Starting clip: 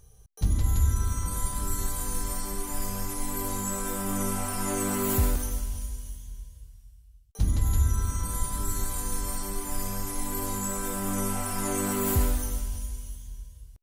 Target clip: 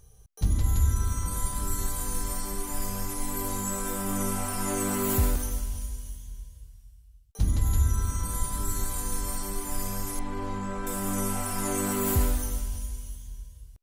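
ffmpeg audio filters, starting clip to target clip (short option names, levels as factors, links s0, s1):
-filter_complex "[0:a]asettb=1/sr,asplit=3[s0][s1][s2];[s0]atrim=end=10.194[s3];[s1]atrim=start=10.19:end=10.87,asetpts=PTS-STARTPTS,afade=t=in:d=0.004:c=qsin,afade=t=out:st=0.676:d=0.004:c=qsin,lowpass=2900[s4];[s2]atrim=start=10.866[s5];[s3][s4]acrossfade=d=0.004:c1=hsin:c2=qsin[s6];[s6][s5]acrossfade=d=0.004:c1=qsin:c2=hsin"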